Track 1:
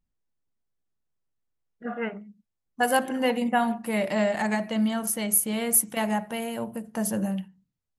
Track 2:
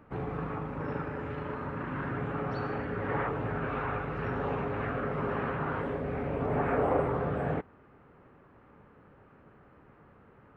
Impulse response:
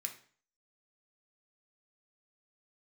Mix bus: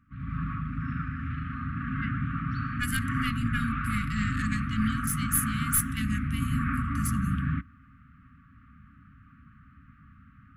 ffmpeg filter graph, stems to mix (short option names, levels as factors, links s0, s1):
-filter_complex "[0:a]aeval=exprs='(tanh(4.47*val(0)+0.7)-tanh(0.7))/4.47':c=same,volume=0.794,asplit=2[s0][s1];[s1]volume=0.211[s2];[1:a]highshelf=f=3500:g=-8,dynaudnorm=f=160:g=3:m=3.76,volume=0.422[s3];[2:a]atrim=start_sample=2205[s4];[s2][s4]afir=irnorm=-1:irlink=0[s5];[s0][s3][s5]amix=inputs=3:normalize=0,equalizer=f=64:t=o:w=1.1:g=8,afftfilt=real='re*(1-between(b*sr/4096,280,1100))':imag='im*(1-between(b*sr/4096,280,1100))':win_size=4096:overlap=0.75"